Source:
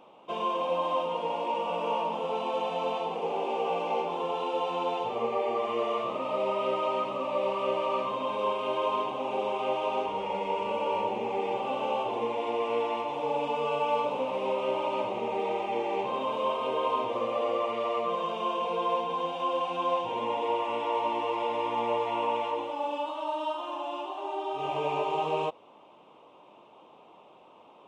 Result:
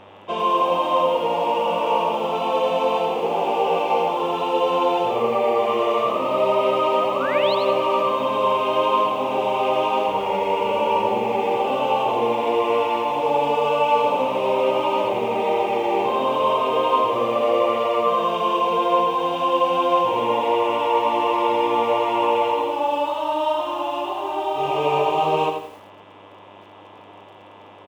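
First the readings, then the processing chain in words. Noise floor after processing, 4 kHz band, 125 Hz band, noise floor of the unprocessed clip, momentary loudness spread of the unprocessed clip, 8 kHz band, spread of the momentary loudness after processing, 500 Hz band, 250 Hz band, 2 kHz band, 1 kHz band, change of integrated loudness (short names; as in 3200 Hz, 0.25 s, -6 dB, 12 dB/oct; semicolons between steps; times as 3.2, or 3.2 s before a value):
-45 dBFS, +9.5 dB, +9.5 dB, -55 dBFS, 3 LU, n/a, 3 LU, +9.5 dB, +10.0 dB, +9.5 dB, +10.0 dB, +9.5 dB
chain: buzz 100 Hz, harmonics 36, -60 dBFS -3 dB/oct; painted sound rise, 6.92–7.55, 470–4500 Hz -39 dBFS; feedback echo 83 ms, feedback 34%, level -6 dB; lo-fi delay 0.106 s, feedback 35%, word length 8-bit, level -14 dB; gain +8 dB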